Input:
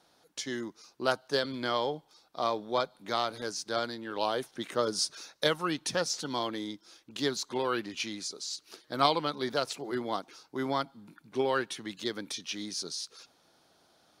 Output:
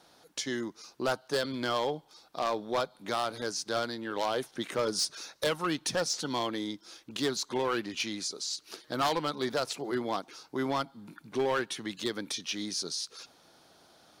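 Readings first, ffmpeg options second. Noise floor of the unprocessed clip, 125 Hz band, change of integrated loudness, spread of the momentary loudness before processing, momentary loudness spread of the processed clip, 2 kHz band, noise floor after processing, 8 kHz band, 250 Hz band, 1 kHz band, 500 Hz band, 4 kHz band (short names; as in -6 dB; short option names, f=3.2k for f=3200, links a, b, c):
-67 dBFS, +0.5 dB, 0.0 dB, 10 LU, 9 LU, 0.0 dB, -62 dBFS, +2.0 dB, +1.0 dB, -1.0 dB, 0.0 dB, 0.0 dB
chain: -filter_complex "[0:a]asplit=2[a][b];[b]acompressor=threshold=-44dB:ratio=6,volume=-1dB[c];[a][c]amix=inputs=2:normalize=0,asoftclip=type=hard:threshold=-23dB"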